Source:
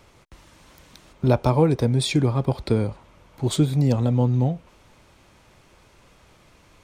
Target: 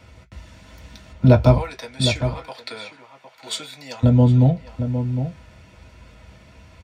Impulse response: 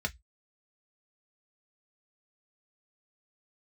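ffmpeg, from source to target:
-filter_complex "[0:a]asettb=1/sr,asplit=3[s0][s1][s2];[s0]atrim=end=1.574[s3];[s1]atrim=start=1.57:end=4.03,asetpts=PTS-STARTPTS,afade=t=in:d=0.004:c=qsin,afade=t=out:st=2.456:d=0.004:c=qsin,highpass=1200[s4];[s2]atrim=start=4.026[s5];[s3][s4]acrossfade=d=0.004:c1=hsin:c2=qsin[s6];[s6][s5]acrossfade=d=0.004:c1=qsin:c2=hsin,asplit=2[s7][s8];[s8]adelay=758,volume=0.355,highshelf=f=4000:g=-17.1[s9];[s7][s9]amix=inputs=2:normalize=0[s10];[1:a]atrim=start_sample=2205[s11];[s10][s11]afir=irnorm=-1:irlink=0"

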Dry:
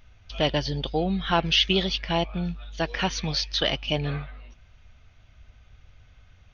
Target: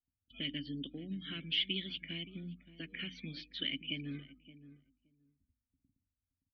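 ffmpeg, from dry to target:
-filter_complex "[0:a]aemphasis=mode=reproduction:type=75fm,afftdn=nr=33:nf=-41,agate=range=0.251:threshold=0.00447:ratio=16:detection=peak,bandreject=f=60:t=h:w=6,bandreject=f=120:t=h:w=6,bandreject=f=180:t=h:w=6,bandreject=f=240:t=h:w=6,bandreject=f=300:t=h:w=6,acrossover=split=180|1400[s0][s1][s2];[s1]acompressor=threshold=0.0178:ratio=6[s3];[s0][s3][s2]amix=inputs=3:normalize=0,asplit=3[s4][s5][s6];[s4]bandpass=f=270:t=q:w=8,volume=1[s7];[s5]bandpass=f=2290:t=q:w=8,volume=0.501[s8];[s6]bandpass=f=3010:t=q:w=8,volume=0.355[s9];[s7][s8][s9]amix=inputs=3:normalize=0,asplit=2[s10][s11];[s11]adelay=571,lowpass=f=950:p=1,volume=0.2,asplit=2[s12][s13];[s13]adelay=571,lowpass=f=950:p=1,volume=0.15[s14];[s12][s14]amix=inputs=2:normalize=0[s15];[s10][s15]amix=inputs=2:normalize=0,volume=1.5"

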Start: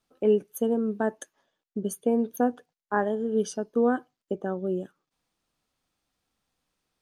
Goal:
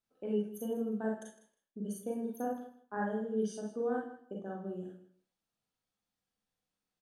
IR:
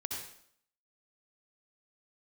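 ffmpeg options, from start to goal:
-filter_complex "[0:a]aecho=1:1:157|314:0.188|0.0301[s0];[1:a]atrim=start_sample=2205,asetrate=83790,aresample=44100[s1];[s0][s1]afir=irnorm=-1:irlink=0,volume=0.473"

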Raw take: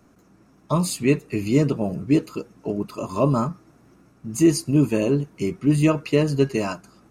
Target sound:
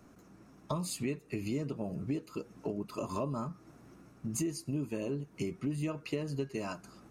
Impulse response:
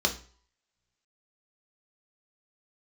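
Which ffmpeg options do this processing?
-af "acompressor=threshold=0.0282:ratio=6,volume=0.794"

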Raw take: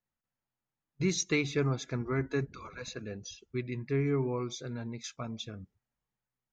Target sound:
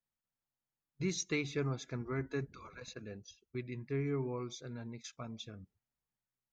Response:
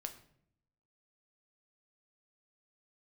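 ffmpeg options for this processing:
-filter_complex "[0:a]asettb=1/sr,asplit=3[s0][s1][s2];[s0]atrim=end=2.804[s3];[s1]atrim=start=2.8:end=5.13,asetpts=PTS-STARTPTS,afade=t=in:d=0.004:c=qsin,afade=t=out:st=2.326:d=0.004:c=qsin,agate=range=0.355:threshold=0.00708:ratio=16:detection=peak[s4];[s2]atrim=start=5.126[s5];[s3][s4]acrossfade=d=0.004:c1=hsin:c2=qsin[s6];[s6][s5]acrossfade=d=0.004:c1=qsin:c2=hsin,volume=0.501"

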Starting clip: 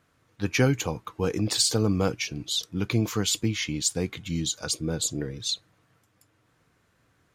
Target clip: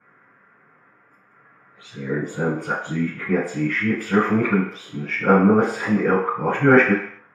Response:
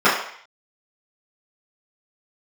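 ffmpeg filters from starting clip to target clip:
-filter_complex "[0:a]areverse,highshelf=f=2900:t=q:w=3:g=-13.5[s0];[1:a]atrim=start_sample=2205[s1];[s0][s1]afir=irnorm=-1:irlink=0,volume=0.188"

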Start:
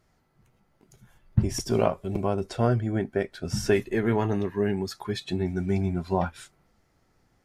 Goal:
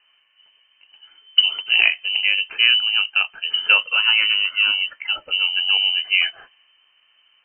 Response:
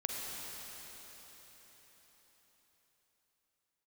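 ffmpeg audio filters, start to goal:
-af "aeval=exprs='0.447*(cos(1*acos(clip(val(0)/0.447,-1,1)))-cos(1*PI/2))+0.00891*(cos(7*acos(clip(val(0)/0.447,-1,1)))-cos(7*PI/2))':c=same,acontrast=78,lowpass=f=2600:t=q:w=0.5098,lowpass=f=2600:t=q:w=0.6013,lowpass=f=2600:t=q:w=0.9,lowpass=f=2600:t=q:w=2.563,afreqshift=-3100,volume=1.12"

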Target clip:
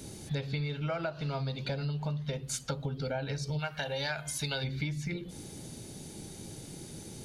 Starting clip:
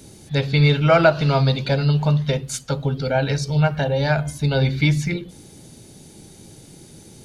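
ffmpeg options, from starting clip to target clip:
-filter_complex "[0:a]asplit=3[s0][s1][s2];[s0]afade=t=out:st=3.58:d=0.02[s3];[s1]tiltshelf=f=820:g=-8.5,afade=t=in:st=3.58:d=0.02,afade=t=out:st=4.63:d=0.02[s4];[s2]afade=t=in:st=4.63:d=0.02[s5];[s3][s4][s5]amix=inputs=3:normalize=0,acompressor=threshold=0.0316:ratio=12,volume=0.891"

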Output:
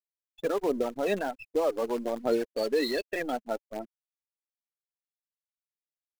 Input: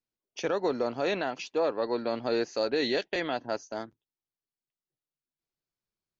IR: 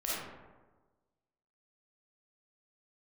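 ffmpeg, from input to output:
-filter_complex "[0:a]afftfilt=real='re*gte(hypot(re,im),0.0562)':imag='im*gte(hypot(re,im),0.0562)':win_size=1024:overlap=0.75,asplit=2[s0][s1];[s1]acrusher=bits=6:dc=4:mix=0:aa=0.000001,volume=0.501[s2];[s0][s2]amix=inputs=2:normalize=0,aphaser=in_gain=1:out_gain=1:delay=4.9:decay=0.35:speed=1.3:type=sinusoidal,volume=0.668"

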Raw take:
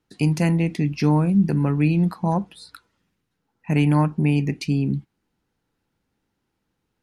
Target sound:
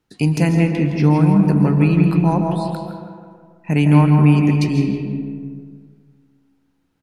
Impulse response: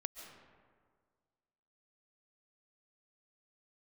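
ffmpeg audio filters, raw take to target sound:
-filter_complex "[0:a]asplit=2[s0][s1];[s1]adelay=163,lowpass=f=1800:p=1,volume=0.531,asplit=2[s2][s3];[s3]adelay=163,lowpass=f=1800:p=1,volume=0.55,asplit=2[s4][s5];[s5]adelay=163,lowpass=f=1800:p=1,volume=0.55,asplit=2[s6][s7];[s7]adelay=163,lowpass=f=1800:p=1,volume=0.55,asplit=2[s8][s9];[s9]adelay=163,lowpass=f=1800:p=1,volume=0.55,asplit=2[s10][s11];[s11]adelay=163,lowpass=f=1800:p=1,volume=0.55,asplit=2[s12][s13];[s13]adelay=163,lowpass=f=1800:p=1,volume=0.55[s14];[s0][s2][s4][s6][s8][s10][s12][s14]amix=inputs=8:normalize=0,asettb=1/sr,asplit=3[s15][s16][s17];[s15]atrim=end=0.684[s18];[s16]atrim=start=0.68:end=1.34,asetpts=PTS-STARTPTS,afade=t=in:d=0.004:c=qsin,afade=t=out:st=0.656:d=0.004:c=qsin,acrossover=split=3400[s19][s20];[s20]acompressor=threshold=0.00631:ratio=4:attack=1:release=60[s21];[s19][s21]amix=inputs=2:normalize=0[s22];[s17]atrim=start=1.336[s23];[s18][s22]acrossfade=d=0.004:c1=hsin:c2=qsin[s24];[s24][s23]acrossfade=d=0.004:c1=qsin:c2=hsin[s25];[1:a]atrim=start_sample=2205[s26];[s25][s26]afir=irnorm=-1:irlink=0,volume=2"

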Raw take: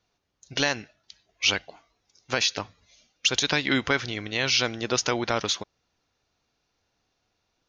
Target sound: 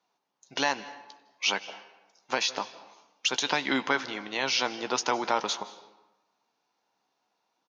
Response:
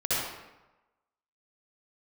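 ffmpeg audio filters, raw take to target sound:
-filter_complex "[0:a]highpass=f=180:w=0.5412,highpass=f=180:w=1.3066,equalizer=f=910:w=2.1:g=11.5,asplit=2[s0][s1];[s1]adelay=15,volume=0.251[s2];[s0][s2]amix=inputs=2:normalize=0,asplit=2[s3][s4];[1:a]atrim=start_sample=2205,adelay=95[s5];[s4][s5]afir=irnorm=-1:irlink=0,volume=0.0473[s6];[s3][s6]amix=inputs=2:normalize=0,volume=0.562"

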